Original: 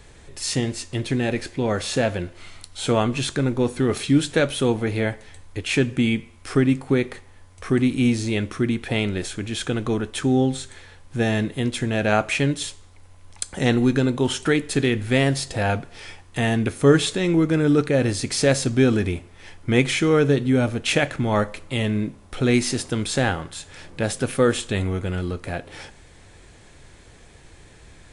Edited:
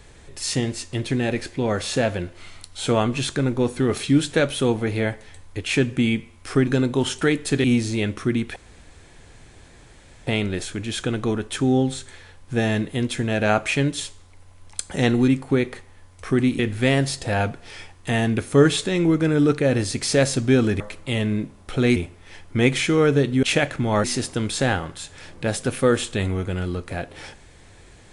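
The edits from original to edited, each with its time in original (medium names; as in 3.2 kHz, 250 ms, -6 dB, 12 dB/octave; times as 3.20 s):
6.67–7.98 s: swap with 13.91–14.88 s
8.90 s: insert room tone 1.71 s
20.56–20.83 s: delete
21.44–22.60 s: move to 19.09 s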